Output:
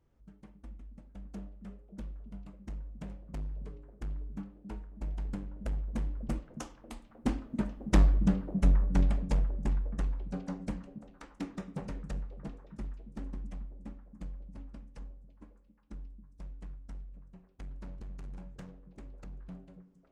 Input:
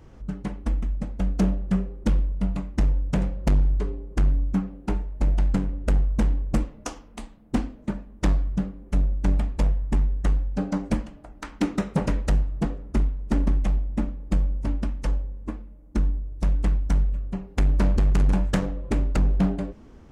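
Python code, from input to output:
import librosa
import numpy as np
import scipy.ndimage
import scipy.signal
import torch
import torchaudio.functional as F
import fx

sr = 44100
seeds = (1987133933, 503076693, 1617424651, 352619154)

y = fx.doppler_pass(x, sr, speed_mps=13, closest_m=7.4, pass_at_s=8.27)
y = fx.echo_stepped(y, sr, ms=272, hz=180.0, octaves=1.4, feedback_pct=70, wet_db=-7)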